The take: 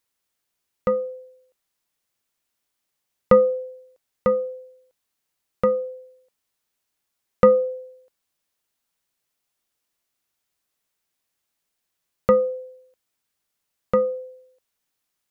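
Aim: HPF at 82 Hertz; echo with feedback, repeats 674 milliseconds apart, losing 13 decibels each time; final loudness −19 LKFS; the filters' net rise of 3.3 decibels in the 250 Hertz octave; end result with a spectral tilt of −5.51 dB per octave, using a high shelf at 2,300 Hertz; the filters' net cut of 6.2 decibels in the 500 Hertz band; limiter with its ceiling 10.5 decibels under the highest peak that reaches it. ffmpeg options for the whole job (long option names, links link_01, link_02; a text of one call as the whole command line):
ffmpeg -i in.wav -af "highpass=82,equalizer=frequency=250:width_type=o:gain=5.5,equalizer=frequency=500:width_type=o:gain=-7,highshelf=frequency=2300:gain=-4.5,alimiter=limit=-17dB:level=0:latency=1,aecho=1:1:674|1348|2022:0.224|0.0493|0.0108,volume=13.5dB" out.wav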